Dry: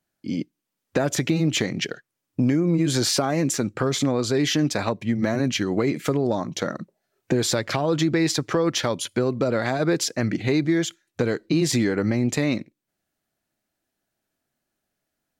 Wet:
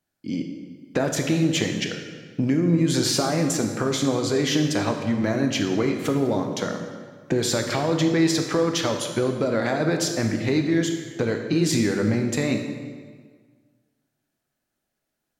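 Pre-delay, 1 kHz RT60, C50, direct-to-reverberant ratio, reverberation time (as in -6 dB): 18 ms, 1.6 s, 6.0 dB, 4.0 dB, 1.6 s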